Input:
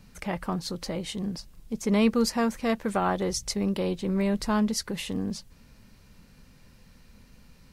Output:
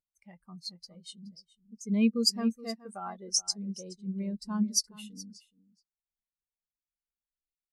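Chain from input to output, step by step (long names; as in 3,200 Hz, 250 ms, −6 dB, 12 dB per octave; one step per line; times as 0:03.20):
first-order pre-emphasis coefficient 0.9
single-tap delay 422 ms −7.5 dB
every bin expanded away from the loudest bin 2.5 to 1
level +7 dB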